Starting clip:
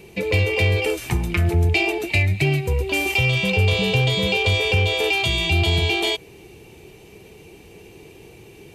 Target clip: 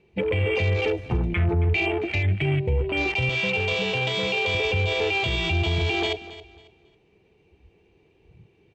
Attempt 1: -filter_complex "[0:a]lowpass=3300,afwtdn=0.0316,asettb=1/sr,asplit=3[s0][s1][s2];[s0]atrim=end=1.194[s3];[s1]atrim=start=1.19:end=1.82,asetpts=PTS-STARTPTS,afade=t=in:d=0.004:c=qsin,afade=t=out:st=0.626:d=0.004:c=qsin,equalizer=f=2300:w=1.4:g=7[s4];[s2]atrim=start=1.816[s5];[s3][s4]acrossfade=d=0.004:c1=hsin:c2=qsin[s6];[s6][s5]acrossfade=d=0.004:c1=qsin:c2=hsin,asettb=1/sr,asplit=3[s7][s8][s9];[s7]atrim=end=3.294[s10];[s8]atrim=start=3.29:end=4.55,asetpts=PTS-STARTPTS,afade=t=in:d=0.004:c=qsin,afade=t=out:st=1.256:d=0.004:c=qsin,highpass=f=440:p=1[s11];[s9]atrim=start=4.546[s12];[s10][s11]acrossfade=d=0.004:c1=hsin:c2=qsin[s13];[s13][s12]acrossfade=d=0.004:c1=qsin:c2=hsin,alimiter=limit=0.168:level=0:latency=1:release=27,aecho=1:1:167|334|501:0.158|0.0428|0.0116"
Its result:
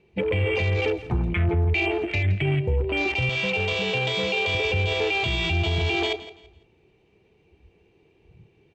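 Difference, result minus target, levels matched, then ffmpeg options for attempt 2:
echo 106 ms early
-filter_complex "[0:a]lowpass=3300,afwtdn=0.0316,asettb=1/sr,asplit=3[s0][s1][s2];[s0]atrim=end=1.194[s3];[s1]atrim=start=1.19:end=1.82,asetpts=PTS-STARTPTS,afade=t=in:d=0.004:c=qsin,afade=t=out:st=0.626:d=0.004:c=qsin,equalizer=f=2300:w=1.4:g=7[s4];[s2]atrim=start=1.816[s5];[s3][s4]acrossfade=d=0.004:c1=hsin:c2=qsin[s6];[s6][s5]acrossfade=d=0.004:c1=qsin:c2=hsin,asettb=1/sr,asplit=3[s7][s8][s9];[s7]atrim=end=3.294[s10];[s8]atrim=start=3.29:end=4.55,asetpts=PTS-STARTPTS,afade=t=in:d=0.004:c=qsin,afade=t=out:st=1.256:d=0.004:c=qsin,highpass=f=440:p=1[s11];[s9]atrim=start=4.546[s12];[s10][s11]acrossfade=d=0.004:c1=hsin:c2=qsin[s13];[s13][s12]acrossfade=d=0.004:c1=qsin:c2=hsin,alimiter=limit=0.168:level=0:latency=1:release=27,aecho=1:1:273|546|819:0.158|0.0428|0.0116"

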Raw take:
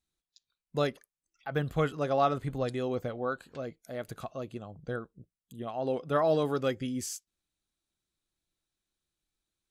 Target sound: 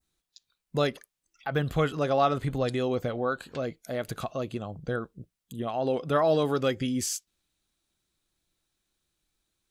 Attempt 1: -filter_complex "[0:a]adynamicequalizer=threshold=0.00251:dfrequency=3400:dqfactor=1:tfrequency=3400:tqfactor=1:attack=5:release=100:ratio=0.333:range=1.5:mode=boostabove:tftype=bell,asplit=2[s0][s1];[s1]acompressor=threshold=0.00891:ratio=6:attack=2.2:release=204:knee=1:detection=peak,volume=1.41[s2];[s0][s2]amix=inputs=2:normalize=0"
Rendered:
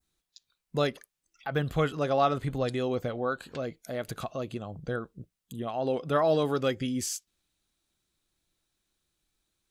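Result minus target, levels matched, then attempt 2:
compression: peak gain reduction +5.5 dB
-filter_complex "[0:a]adynamicequalizer=threshold=0.00251:dfrequency=3400:dqfactor=1:tfrequency=3400:tqfactor=1:attack=5:release=100:ratio=0.333:range=1.5:mode=boostabove:tftype=bell,asplit=2[s0][s1];[s1]acompressor=threshold=0.0188:ratio=6:attack=2.2:release=204:knee=1:detection=peak,volume=1.41[s2];[s0][s2]amix=inputs=2:normalize=0"

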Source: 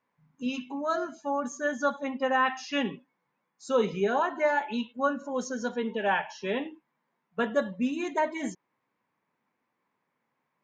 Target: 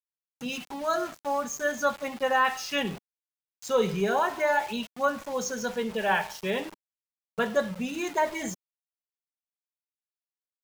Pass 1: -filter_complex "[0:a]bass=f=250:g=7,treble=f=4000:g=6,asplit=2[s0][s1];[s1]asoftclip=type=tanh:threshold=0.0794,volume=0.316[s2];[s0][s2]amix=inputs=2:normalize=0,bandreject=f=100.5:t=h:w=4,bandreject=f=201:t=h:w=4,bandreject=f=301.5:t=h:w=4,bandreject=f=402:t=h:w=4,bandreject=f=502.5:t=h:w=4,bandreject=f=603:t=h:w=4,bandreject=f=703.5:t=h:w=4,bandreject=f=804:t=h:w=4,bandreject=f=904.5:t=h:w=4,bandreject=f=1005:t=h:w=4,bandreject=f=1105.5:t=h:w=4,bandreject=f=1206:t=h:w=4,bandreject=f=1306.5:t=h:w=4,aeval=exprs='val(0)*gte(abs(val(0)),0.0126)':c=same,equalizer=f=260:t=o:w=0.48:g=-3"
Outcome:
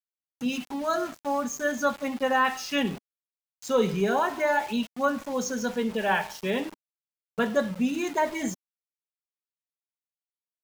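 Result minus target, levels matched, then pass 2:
250 Hz band +4.0 dB
-filter_complex "[0:a]bass=f=250:g=7,treble=f=4000:g=6,asplit=2[s0][s1];[s1]asoftclip=type=tanh:threshold=0.0794,volume=0.316[s2];[s0][s2]amix=inputs=2:normalize=0,bandreject=f=100.5:t=h:w=4,bandreject=f=201:t=h:w=4,bandreject=f=301.5:t=h:w=4,bandreject=f=402:t=h:w=4,bandreject=f=502.5:t=h:w=4,bandreject=f=603:t=h:w=4,bandreject=f=703.5:t=h:w=4,bandreject=f=804:t=h:w=4,bandreject=f=904.5:t=h:w=4,bandreject=f=1005:t=h:w=4,bandreject=f=1105.5:t=h:w=4,bandreject=f=1206:t=h:w=4,bandreject=f=1306.5:t=h:w=4,aeval=exprs='val(0)*gte(abs(val(0)),0.0126)':c=same,equalizer=f=260:t=o:w=0.48:g=-11.5"

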